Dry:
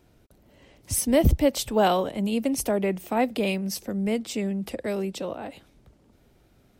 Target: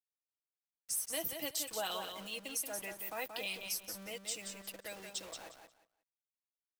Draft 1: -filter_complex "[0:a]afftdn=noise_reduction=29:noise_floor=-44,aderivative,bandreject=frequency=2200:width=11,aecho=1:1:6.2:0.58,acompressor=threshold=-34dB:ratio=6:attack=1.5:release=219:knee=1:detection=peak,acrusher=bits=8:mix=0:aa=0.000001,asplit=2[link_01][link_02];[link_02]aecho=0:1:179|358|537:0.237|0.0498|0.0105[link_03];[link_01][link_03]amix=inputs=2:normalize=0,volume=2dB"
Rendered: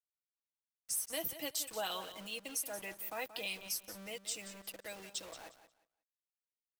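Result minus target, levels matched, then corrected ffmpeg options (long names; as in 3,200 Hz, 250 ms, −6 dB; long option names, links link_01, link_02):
echo-to-direct −6 dB
-filter_complex "[0:a]afftdn=noise_reduction=29:noise_floor=-44,aderivative,bandreject=frequency=2200:width=11,aecho=1:1:6.2:0.58,acompressor=threshold=-34dB:ratio=6:attack=1.5:release=219:knee=1:detection=peak,acrusher=bits=8:mix=0:aa=0.000001,asplit=2[link_01][link_02];[link_02]aecho=0:1:179|358|537:0.473|0.0994|0.0209[link_03];[link_01][link_03]amix=inputs=2:normalize=0,volume=2dB"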